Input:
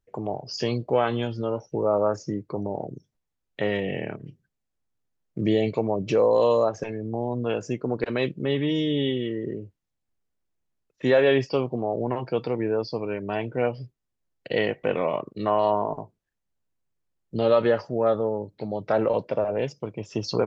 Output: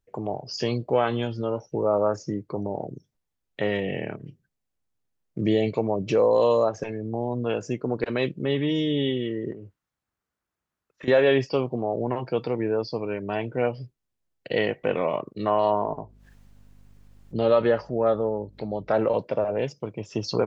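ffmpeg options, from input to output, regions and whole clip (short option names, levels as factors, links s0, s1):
-filter_complex "[0:a]asettb=1/sr,asplit=3[s0][s1][s2];[s0]atrim=end=9.524[s3];[s1]atrim=start=9.52:end=11.08,asetpts=PTS-STARTPTS,afade=t=in:d=0.004:c=qsin,afade=t=out:st=1.556:d=0.004:c=qsin,highpass=42,equalizer=f=1300:t=o:w=1.2:g=10,acompressor=threshold=0.0158:ratio=5:attack=3.2:release=140:knee=1:detection=peak[s4];[s2]atrim=start=11.076[s5];[s3][s4]acrossfade=d=0.004:c1=hsin:c2=qsin[s6];[s6][s5]acrossfade=d=0.004:c1=qsin:c2=hsin,asettb=1/sr,asplit=3[s7][s8][s9];[s7]atrim=end=15.854[s10];[s8]atrim=start=15.85:end=18.94,asetpts=PTS-STARTPTS,afade=t=in:d=0.004:c=qsin,afade=t=out:st=3.086:d=0.004:c=qsin,highshelf=f=5400:g=-6,acompressor=mode=upward:threshold=0.0178:ratio=2.5:attack=3.2:release=140:knee=2.83:detection=peak,aeval=exprs='val(0)+0.00224*(sin(2*PI*50*n/s)+sin(2*PI*2*50*n/s)/2+sin(2*PI*3*50*n/s)/3+sin(2*PI*4*50*n/s)/4+sin(2*PI*5*50*n/s)/5)':c=same[s11];[s9]atrim=start=18.936[s12];[s10][s11]acrossfade=d=0.004:c1=hsin:c2=qsin[s13];[s13][s12]acrossfade=d=0.004:c1=qsin:c2=hsin"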